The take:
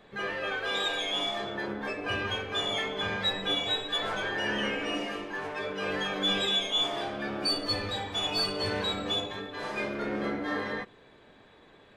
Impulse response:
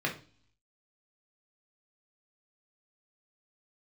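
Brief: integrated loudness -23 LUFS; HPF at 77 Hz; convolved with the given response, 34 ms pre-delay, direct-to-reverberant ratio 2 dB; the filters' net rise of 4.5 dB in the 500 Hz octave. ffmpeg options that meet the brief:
-filter_complex "[0:a]highpass=77,equalizer=f=500:t=o:g=5.5,asplit=2[a][b];[1:a]atrim=start_sample=2205,adelay=34[c];[b][c]afir=irnorm=-1:irlink=0,volume=-10dB[d];[a][d]amix=inputs=2:normalize=0,volume=4dB"

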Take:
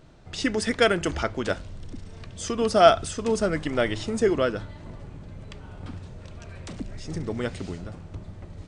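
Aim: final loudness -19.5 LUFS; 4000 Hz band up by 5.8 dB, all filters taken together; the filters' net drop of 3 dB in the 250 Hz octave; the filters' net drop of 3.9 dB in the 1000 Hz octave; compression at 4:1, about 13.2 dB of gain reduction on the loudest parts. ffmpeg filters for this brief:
-af "equalizer=f=250:t=o:g=-3.5,equalizer=f=1k:t=o:g=-7.5,equalizer=f=4k:t=o:g=8.5,acompressor=threshold=-29dB:ratio=4,volume=15.5dB"

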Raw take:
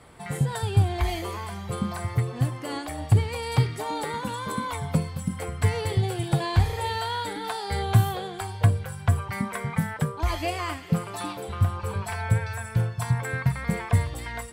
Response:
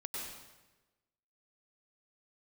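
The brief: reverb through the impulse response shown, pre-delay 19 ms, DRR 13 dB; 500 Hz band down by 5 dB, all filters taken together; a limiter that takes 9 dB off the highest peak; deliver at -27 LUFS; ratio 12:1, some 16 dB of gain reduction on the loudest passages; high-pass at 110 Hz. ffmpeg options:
-filter_complex "[0:a]highpass=110,equalizer=f=500:t=o:g=-6.5,acompressor=threshold=-33dB:ratio=12,alimiter=level_in=5.5dB:limit=-24dB:level=0:latency=1,volume=-5.5dB,asplit=2[a][b];[1:a]atrim=start_sample=2205,adelay=19[c];[b][c]afir=irnorm=-1:irlink=0,volume=-13.5dB[d];[a][d]amix=inputs=2:normalize=0,volume=12.5dB"

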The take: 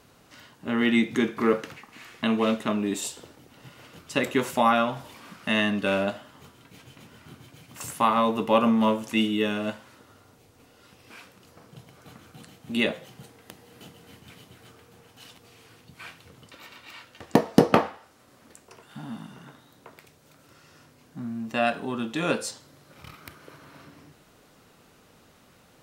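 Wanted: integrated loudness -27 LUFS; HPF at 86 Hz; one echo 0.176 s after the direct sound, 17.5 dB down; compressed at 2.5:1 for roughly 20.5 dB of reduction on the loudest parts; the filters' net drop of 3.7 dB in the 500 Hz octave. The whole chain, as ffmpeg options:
-af "highpass=86,equalizer=f=500:t=o:g=-4.5,acompressor=threshold=-47dB:ratio=2.5,aecho=1:1:176:0.133,volume=19dB"

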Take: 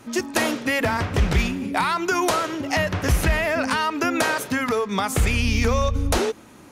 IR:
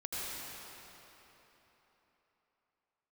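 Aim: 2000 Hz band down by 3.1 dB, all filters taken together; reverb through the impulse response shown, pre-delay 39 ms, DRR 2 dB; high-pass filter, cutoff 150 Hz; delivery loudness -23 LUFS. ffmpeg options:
-filter_complex "[0:a]highpass=150,equalizer=f=2k:t=o:g=-4,asplit=2[a][b];[1:a]atrim=start_sample=2205,adelay=39[c];[b][c]afir=irnorm=-1:irlink=0,volume=-5.5dB[d];[a][d]amix=inputs=2:normalize=0,volume=-0.5dB"

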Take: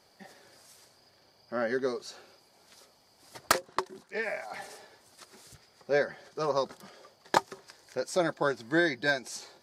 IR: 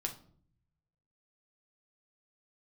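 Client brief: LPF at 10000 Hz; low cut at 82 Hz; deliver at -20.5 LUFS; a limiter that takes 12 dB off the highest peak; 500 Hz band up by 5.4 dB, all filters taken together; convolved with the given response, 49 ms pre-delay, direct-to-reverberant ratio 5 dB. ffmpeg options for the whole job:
-filter_complex "[0:a]highpass=82,lowpass=10k,equalizer=f=500:t=o:g=6.5,alimiter=limit=-18dB:level=0:latency=1,asplit=2[a][b];[1:a]atrim=start_sample=2205,adelay=49[c];[b][c]afir=irnorm=-1:irlink=0,volume=-5.5dB[d];[a][d]amix=inputs=2:normalize=0,volume=10dB"

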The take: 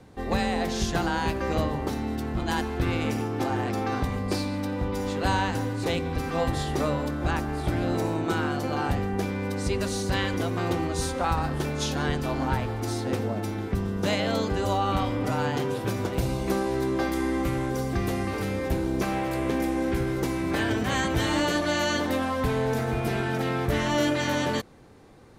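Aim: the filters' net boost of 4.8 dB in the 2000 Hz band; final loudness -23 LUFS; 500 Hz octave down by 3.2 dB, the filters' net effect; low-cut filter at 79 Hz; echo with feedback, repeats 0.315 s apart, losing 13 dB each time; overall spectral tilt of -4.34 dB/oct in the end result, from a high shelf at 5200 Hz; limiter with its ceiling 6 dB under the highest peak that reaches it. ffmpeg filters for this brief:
-af "highpass=79,equalizer=f=500:t=o:g=-4.5,equalizer=f=2k:t=o:g=5.5,highshelf=f=5.2k:g=6.5,alimiter=limit=-15.5dB:level=0:latency=1,aecho=1:1:315|630|945:0.224|0.0493|0.0108,volume=4.5dB"

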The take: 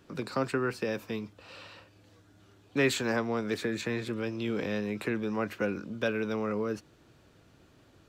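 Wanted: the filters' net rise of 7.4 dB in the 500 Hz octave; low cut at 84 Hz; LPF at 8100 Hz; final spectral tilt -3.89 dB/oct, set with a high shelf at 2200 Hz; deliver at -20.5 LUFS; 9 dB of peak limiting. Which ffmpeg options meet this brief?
-af "highpass=84,lowpass=8.1k,equalizer=f=500:t=o:g=8.5,highshelf=f=2.2k:g=6,volume=9.5dB,alimiter=limit=-10dB:level=0:latency=1"

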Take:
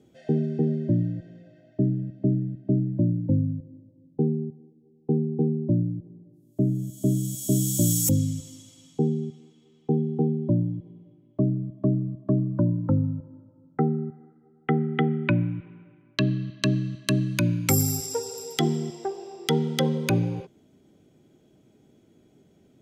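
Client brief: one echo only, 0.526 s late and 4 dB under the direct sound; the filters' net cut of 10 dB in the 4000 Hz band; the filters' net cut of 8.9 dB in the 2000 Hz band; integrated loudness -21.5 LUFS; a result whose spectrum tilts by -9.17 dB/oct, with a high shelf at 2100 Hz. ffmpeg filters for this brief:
-af "equalizer=f=2k:t=o:g=-7,highshelf=f=2.1k:g=-4.5,equalizer=f=4k:t=o:g=-6.5,aecho=1:1:526:0.631,volume=4dB"

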